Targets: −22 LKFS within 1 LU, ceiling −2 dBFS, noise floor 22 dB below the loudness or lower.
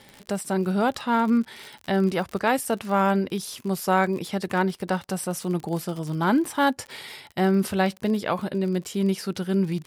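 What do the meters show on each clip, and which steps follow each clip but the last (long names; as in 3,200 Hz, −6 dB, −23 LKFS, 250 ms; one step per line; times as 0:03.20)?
crackle rate 45 per second; integrated loudness −25.0 LKFS; sample peak −9.5 dBFS; target loudness −22.0 LKFS
→ click removal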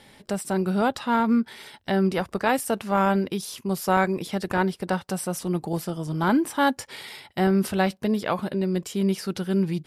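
crackle rate 0 per second; integrated loudness −25.0 LKFS; sample peak −9.5 dBFS; target loudness −22.0 LKFS
→ level +3 dB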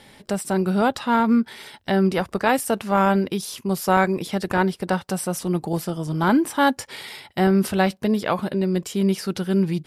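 integrated loudness −22.0 LKFS; sample peak −6.5 dBFS; background noise floor −53 dBFS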